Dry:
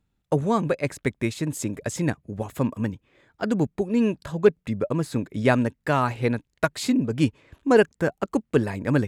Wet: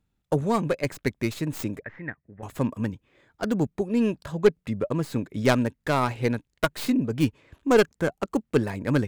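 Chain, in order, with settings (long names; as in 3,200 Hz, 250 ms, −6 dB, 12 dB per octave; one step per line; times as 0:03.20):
stylus tracing distortion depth 0.21 ms
0:01.81–0:02.43: transistor ladder low-pass 2,000 Hz, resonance 80%
level −1.5 dB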